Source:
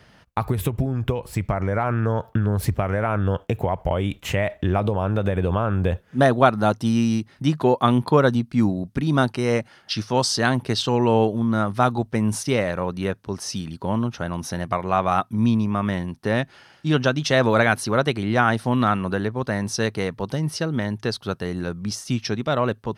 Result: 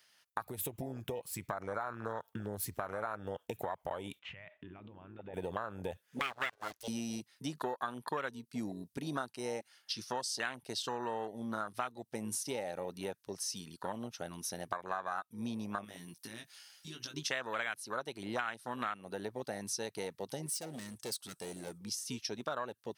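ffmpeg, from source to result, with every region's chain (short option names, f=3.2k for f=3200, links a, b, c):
-filter_complex "[0:a]asettb=1/sr,asplit=3[a][b][c];[a]atrim=end=4.194[d];[b]atrim=start=4.19:end=5.34,asetpts=PTS-STARTPTS,afade=t=in:d=0.004:c=qsin,afade=t=out:st=1.146:d=0.004:c=qsin,lowpass=f=2.9k:w=0.5412,lowpass=f=2.9k:w=1.3066,acompressor=threshold=-29dB:ratio=4:attack=3.2:release=140:knee=1:detection=peak[e];[c]atrim=start=5.336[f];[d][e]acrossfade=d=0.004:c1=hsin:c2=qsin[g];[g][f]acrossfade=d=0.004:c1=qsin:c2=hsin,asettb=1/sr,asplit=3[h][i][j];[h]atrim=end=6.194[k];[i]atrim=start=6.19:end=6.88,asetpts=PTS-STARTPTS,afade=t=in:d=0.004:c=qsin,afade=t=out:st=0.686:d=0.004:c=qsin,highpass=270,lowpass=6.2k,aeval=exprs='abs(val(0))':c=same[l];[j]atrim=start=6.876[m];[k][l]acrossfade=d=0.004:c1=hsin:c2=qsin[n];[n][m]acrossfade=d=0.004:c1=qsin:c2=hsin,asettb=1/sr,asplit=3[o][p][q];[o]atrim=end=15.844[r];[p]atrim=start=15.84:end=17.14,asetpts=PTS-STARTPTS,afade=t=in:d=0.004:c=qsin,afade=t=out:st=1.296:d=0.004:c=qsin,highshelf=f=3.8k:g=9,acompressor=threshold=-27dB:ratio=12:attack=3.2:release=140:knee=1:detection=peak,asplit=2[s][t];[t]adelay=18,volume=-5dB[u];[s][u]amix=inputs=2:normalize=0,atrim=end_sample=57330[v];[q]atrim=start=17.136[w];[r][v]acrossfade=d=0.004:c1=hsin:c2=qsin[x];[x][w]acrossfade=d=0.004:c1=qsin:c2=hsin,asettb=1/sr,asplit=3[y][z][aa];[y]atrim=end=20.464[ab];[z]atrim=start=20.46:end=21.78,asetpts=PTS-STARTPTS,afade=t=in:d=0.004:c=qsin,afade=t=out:st=1.316:d=0.004:c=qsin,equalizer=f=8.2k:t=o:w=0.56:g=14,volume=25dB,asoftclip=hard,volume=-25dB[ac];[aa]atrim=start=21.776[ad];[ab][ac]acrossfade=d=0.004:c1=hsin:c2=qsin[ae];[ae][ad]acrossfade=d=0.004:c1=qsin:c2=hsin,afwtdn=0.0708,aderivative,acompressor=threshold=-48dB:ratio=6,volume=13.5dB"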